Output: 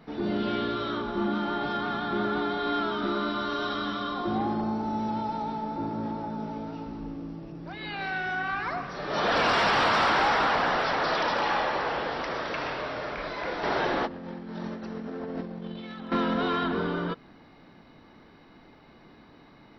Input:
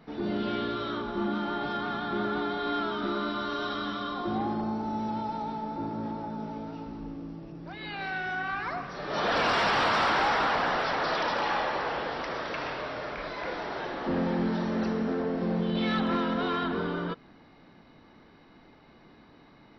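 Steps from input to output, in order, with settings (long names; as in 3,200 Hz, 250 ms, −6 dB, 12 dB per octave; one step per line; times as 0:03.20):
0:13.63–0:16.12: compressor whose output falls as the input rises −34 dBFS, ratio −0.5
level +2 dB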